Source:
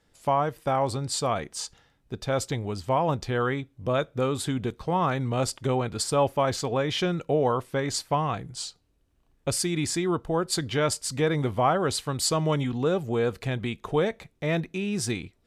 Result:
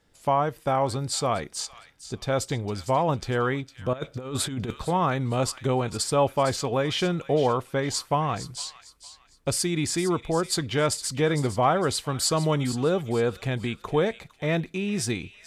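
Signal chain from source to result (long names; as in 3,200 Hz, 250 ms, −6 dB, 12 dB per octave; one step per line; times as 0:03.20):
on a send: delay with a high-pass on its return 457 ms, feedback 33%, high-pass 1,900 Hz, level −11.5 dB
0:03.93–0:04.85: on the sum: compressor whose output falls as the input rises −30 dBFS, ratio −0.5
level +1 dB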